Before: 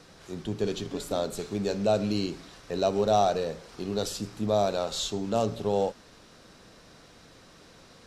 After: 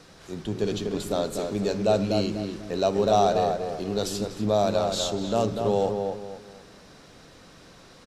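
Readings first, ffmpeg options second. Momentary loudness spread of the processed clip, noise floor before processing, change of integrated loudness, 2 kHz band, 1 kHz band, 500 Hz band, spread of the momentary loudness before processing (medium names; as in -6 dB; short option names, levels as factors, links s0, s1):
11 LU, -54 dBFS, +3.0 dB, +2.5 dB, +3.0 dB, +3.5 dB, 11 LU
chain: -filter_complex "[0:a]asplit=2[s0][s1];[s1]adelay=244,lowpass=f=1800:p=1,volume=0.596,asplit=2[s2][s3];[s3]adelay=244,lowpass=f=1800:p=1,volume=0.33,asplit=2[s4][s5];[s5]adelay=244,lowpass=f=1800:p=1,volume=0.33,asplit=2[s6][s7];[s7]adelay=244,lowpass=f=1800:p=1,volume=0.33[s8];[s0][s2][s4][s6][s8]amix=inputs=5:normalize=0,volume=1.26"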